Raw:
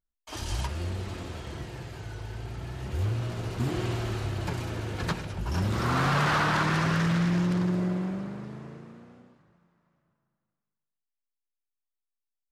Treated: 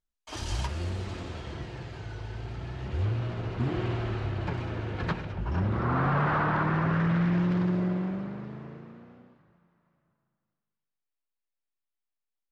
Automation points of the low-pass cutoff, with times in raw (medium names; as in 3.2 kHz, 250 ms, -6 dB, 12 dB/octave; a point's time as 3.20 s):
0.91 s 8.4 kHz
1.55 s 5 kHz
2.53 s 5 kHz
3.49 s 2.9 kHz
5.25 s 2.9 kHz
5.86 s 1.5 kHz
6.82 s 1.5 kHz
7.67 s 3.4 kHz